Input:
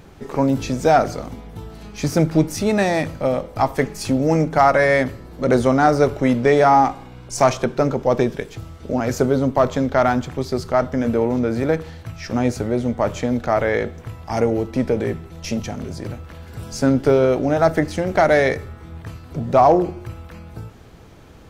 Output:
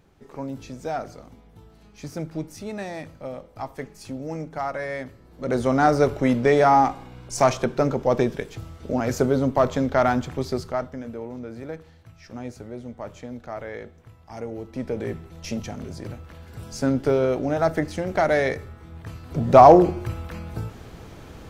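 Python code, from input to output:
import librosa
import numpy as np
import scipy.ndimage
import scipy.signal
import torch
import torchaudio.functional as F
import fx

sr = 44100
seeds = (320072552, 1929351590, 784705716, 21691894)

y = fx.gain(x, sr, db=fx.line((5.14, -14.5), (5.81, -3.0), (10.51, -3.0), (11.07, -15.5), (14.4, -15.5), (15.16, -5.5), (18.94, -5.5), (19.56, 3.0)))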